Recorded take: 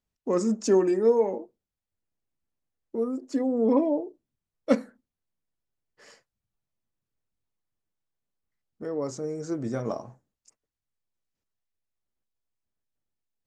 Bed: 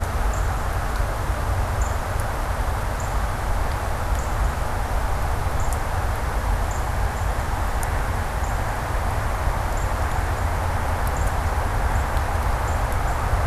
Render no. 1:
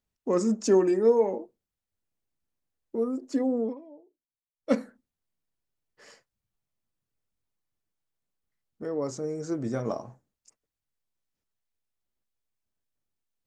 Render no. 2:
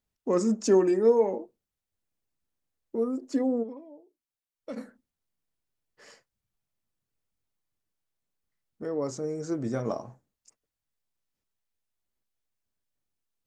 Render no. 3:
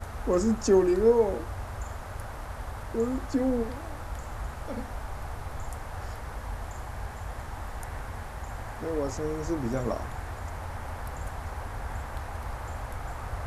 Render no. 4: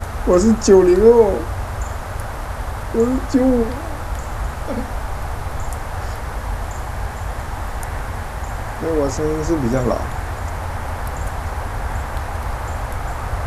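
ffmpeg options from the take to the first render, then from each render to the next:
-filter_complex "[0:a]asplit=3[a][b][c];[a]atrim=end=3.75,asetpts=PTS-STARTPTS,afade=t=out:st=3.53:d=0.22:silence=0.0668344[d];[b]atrim=start=3.75:end=4.56,asetpts=PTS-STARTPTS,volume=-23.5dB[e];[c]atrim=start=4.56,asetpts=PTS-STARTPTS,afade=t=in:d=0.22:silence=0.0668344[f];[d][e][f]concat=n=3:v=0:a=1"
-filter_complex "[0:a]asplit=3[a][b][c];[a]afade=t=out:st=3.62:d=0.02[d];[b]acompressor=threshold=-35dB:ratio=5:attack=3.2:release=140:knee=1:detection=peak,afade=t=in:st=3.62:d=0.02,afade=t=out:st=4.76:d=0.02[e];[c]afade=t=in:st=4.76:d=0.02[f];[d][e][f]amix=inputs=3:normalize=0"
-filter_complex "[1:a]volume=-13.5dB[a];[0:a][a]amix=inputs=2:normalize=0"
-af "volume=11.5dB,alimiter=limit=-1dB:level=0:latency=1"

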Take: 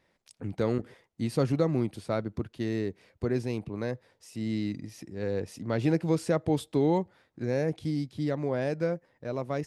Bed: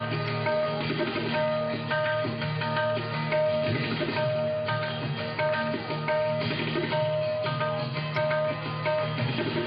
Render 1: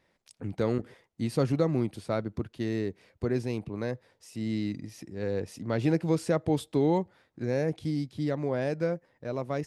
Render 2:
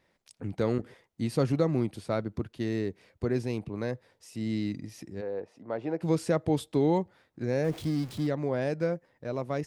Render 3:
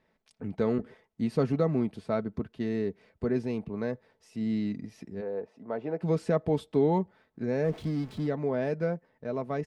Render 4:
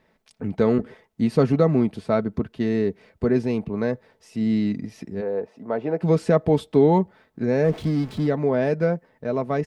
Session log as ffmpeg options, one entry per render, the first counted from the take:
-af anull
-filter_complex "[0:a]asplit=3[a][b][c];[a]afade=t=out:st=5.2:d=0.02[d];[b]bandpass=f=720:t=q:w=1.1,afade=t=in:st=5.2:d=0.02,afade=t=out:st=6:d=0.02[e];[c]afade=t=in:st=6:d=0.02[f];[d][e][f]amix=inputs=3:normalize=0,asettb=1/sr,asplit=3[g][h][i];[g]atrim=end=7.644[j];[h]atrim=start=7.64:end=8.27,asetpts=PTS-STARTPTS,afade=t=in:d=0.004:c=qsin,afade=t=out:st=0.626:d=0.004:c=qsin,aeval=exprs='val(0)+0.5*0.00944*sgn(val(0))':c=same[k];[i]atrim=start=8.266[l];[j][k]acrossfade=d=0.004:c1=hsin:c2=qsin[m];[m][l]acrossfade=d=0.004:c1=qsin:c2=hsin"
-af "lowpass=f=2.1k:p=1,aecho=1:1:4.6:0.45"
-af "volume=8dB"

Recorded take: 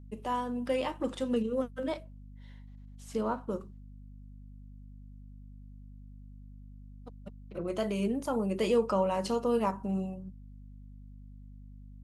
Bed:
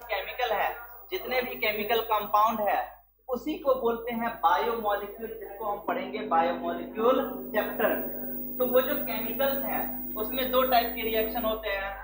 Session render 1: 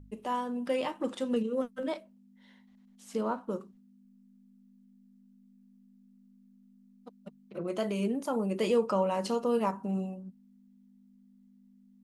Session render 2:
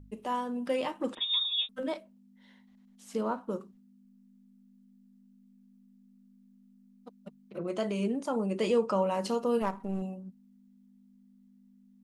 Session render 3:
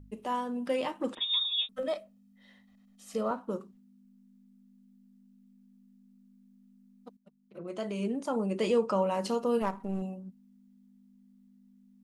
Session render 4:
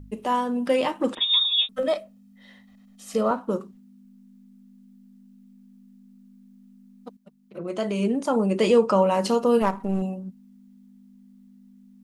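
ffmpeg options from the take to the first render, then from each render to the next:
-af "bandreject=f=50:t=h:w=4,bandreject=f=100:t=h:w=4,bandreject=f=150:t=h:w=4"
-filter_complex "[0:a]asettb=1/sr,asplit=3[a][b][c];[a]atrim=end=1.154[d];[b]atrim=start=1.15:end=1.69,asetpts=PTS-STARTPTS,afade=t=in:d=0.004:c=qsin,afade=t=out:st=0.536:d=0.004:c=qsin,lowpass=f=3.3k:t=q:w=0.5098,lowpass=f=3.3k:t=q:w=0.6013,lowpass=f=3.3k:t=q:w=0.9,lowpass=f=3.3k:t=q:w=2.563,afreqshift=-3900[e];[c]atrim=start=1.686[f];[d][e]acrossfade=d=0.004:c1=hsin:c2=qsin[g];[g][f]acrossfade=d=0.004:c1=qsin:c2=hsin,asettb=1/sr,asplit=3[h][i][j];[h]atrim=end=7.594[k];[i]atrim=start=7.59:end=8.93,asetpts=PTS-STARTPTS,afade=t=in:d=0.004:c=qsin,afade=t=out:st=1.336:d=0.004:c=qsin,lowpass=f=9.4k:w=0.5412,lowpass=f=9.4k:w=1.3066[l];[j]atrim=start=8.926[m];[k][l]acrossfade=d=0.004:c1=hsin:c2=qsin[n];[n][m]acrossfade=d=0.004:c1=qsin:c2=hsin,asettb=1/sr,asplit=3[o][p][q];[o]atrim=end=9.624[r];[p]atrim=start=9.62:end=10.02,asetpts=PTS-STARTPTS,afade=t=in:d=0.004:c=qsin,afade=t=out:st=0.396:d=0.004:c=qsin,aeval=exprs='if(lt(val(0),0),0.447*val(0),val(0))':c=same[s];[q]atrim=start=10.016[t];[r][s]acrossfade=d=0.004:c1=hsin:c2=qsin[u];[u][t]acrossfade=d=0.004:c1=qsin:c2=hsin"
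-filter_complex "[0:a]asettb=1/sr,asplit=3[a][b][c];[a]atrim=end=1.724[d];[b]atrim=start=1.72:end=3.31,asetpts=PTS-STARTPTS,afade=t=in:d=0.004:c=qsin,afade=t=out:st=1.586:d=0.004:c=qsin,aecho=1:1:1.6:0.61,atrim=end_sample=70119[e];[c]atrim=start=3.306[f];[d][e]acrossfade=d=0.004:c1=hsin:c2=qsin[g];[g][f]acrossfade=d=0.004:c1=qsin:c2=hsin,asplit=2[h][i];[h]atrim=end=7.17,asetpts=PTS-STARTPTS,afade=t=out:st=7.166:d=0.004:c=hsin:silence=0.149624[j];[i]atrim=start=7.17,asetpts=PTS-STARTPTS,afade=t=in:d=1.13:silence=0.149624[k];[j][k]concat=n=2:v=0:a=1"
-af "volume=8.5dB"

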